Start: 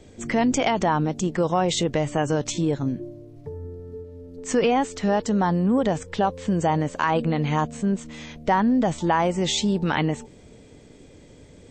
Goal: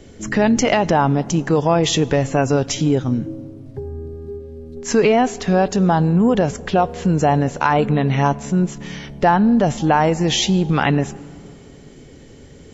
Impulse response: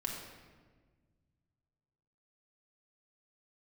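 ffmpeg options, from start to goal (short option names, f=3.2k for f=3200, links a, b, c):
-filter_complex "[0:a]asplit=2[a][b];[1:a]atrim=start_sample=2205,asetrate=25137,aresample=44100[c];[b][c]afir=irnorm=-1:irlink=0,volume=-22.5dB[d];[a][d]amix=inputs=2:normalize=0,asetrate=40517,aresample=44100,volume=5dB"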